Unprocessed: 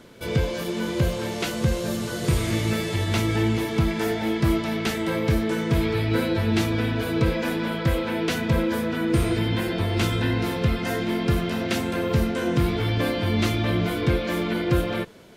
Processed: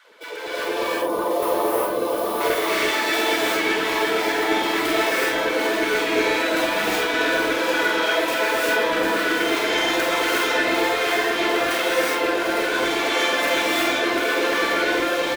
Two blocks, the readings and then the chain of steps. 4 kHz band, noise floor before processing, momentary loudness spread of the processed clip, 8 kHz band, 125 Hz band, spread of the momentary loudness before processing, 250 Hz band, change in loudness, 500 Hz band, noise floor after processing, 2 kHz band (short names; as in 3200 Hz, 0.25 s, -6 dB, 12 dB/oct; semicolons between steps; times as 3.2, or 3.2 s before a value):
+8.0 dB, -30 dBFS, 3 LU, +6.5 dB, -23.0 dB, 3 LU, -2.5 dB, +4.0 dB, +5.5 dB, -26 dBFS, +10.5 dB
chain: tracing distortion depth 0.36 ms; spectral gain 0.65–2.41, 1300–9000 Hz -15 dB; three-band isolator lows -19 dB, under 360 Hz, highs -13 dB, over 3800 Hz; thin delay 0.748 s, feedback 75%, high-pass 3600 Hz, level -10 dB; limiter -27.5 dBFS, peak gain reduction 11.5 dB; flange 1.2 Hz, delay 3.1 ms, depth 6.2 ms, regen +69%; high shelf 2900 Hz +12 dB; LFO high-pass saw down 8.4 Hz 280–1700 Hz; reverb removal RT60 1.8 s; doubler 49 ms -5 dB; AGC gain up to 10 dB; non-linear reverb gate 0.4 s rising, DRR -6.5 dB; gain -1 dB